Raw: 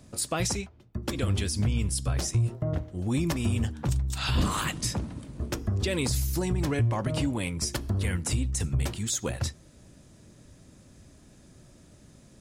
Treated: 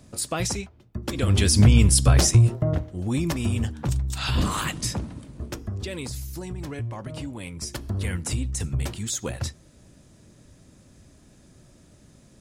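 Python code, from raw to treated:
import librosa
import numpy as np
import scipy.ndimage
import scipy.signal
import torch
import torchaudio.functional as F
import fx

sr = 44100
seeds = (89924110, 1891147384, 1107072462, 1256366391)

y = fx.gain(x, sr, db=fx.line((1.11, 1.5), (1.53, 11.5), (2.23, 11.5), (2.97, 2.0), (4.92, 2.0), (6.16, -6.5), (7.34, -6.5), (8.01, 0.5)))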